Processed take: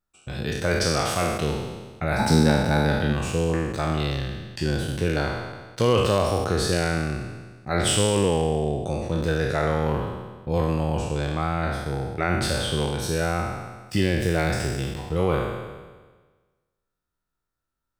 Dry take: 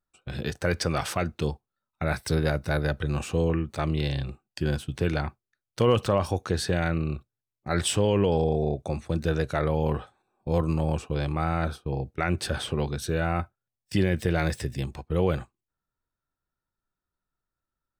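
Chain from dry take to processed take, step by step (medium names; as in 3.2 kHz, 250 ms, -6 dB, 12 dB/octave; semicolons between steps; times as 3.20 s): spectral sustain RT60 1.39 s; 2.18–3.12 s: small resonant body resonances 220/860/3900 Hz, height 16 dB -> 12 dB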